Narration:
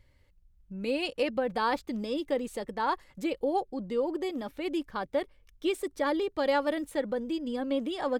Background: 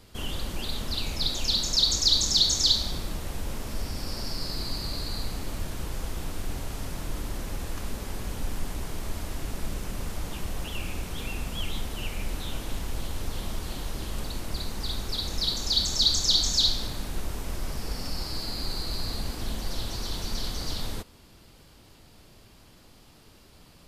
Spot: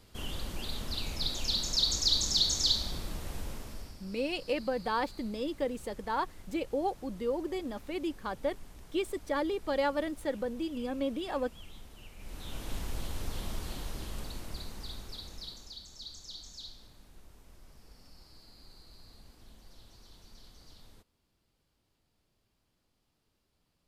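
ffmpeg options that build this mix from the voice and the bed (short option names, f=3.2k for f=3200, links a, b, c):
-filter_complex "[0:a]adelay=3300,volume=-3dB[a];[1:a]volume=8dB,afade=t=out:st=3.39:d=0.6:silence=0.237137,afade=t=in:st=12.17:d=0.58:silence=0.211349,afade=t=out:st=13.59:d=2.2:silence=0.112202[b];[a][b]amix=inputs=2:normalize=0"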